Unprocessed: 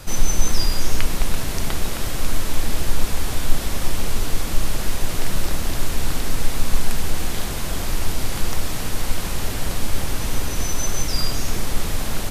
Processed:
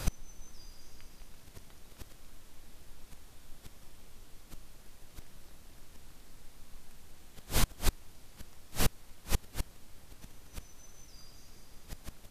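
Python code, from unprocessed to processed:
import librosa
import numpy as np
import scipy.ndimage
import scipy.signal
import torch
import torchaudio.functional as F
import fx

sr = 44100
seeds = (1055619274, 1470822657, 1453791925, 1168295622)

y = fx.echo_wet_highpass(x, sr, ms=195, feedback_pct=62, hz=2800.0, wet_db=-6)
y = fx.gate_flip(y, sr, shuts_db=-12.0, range_db=-31)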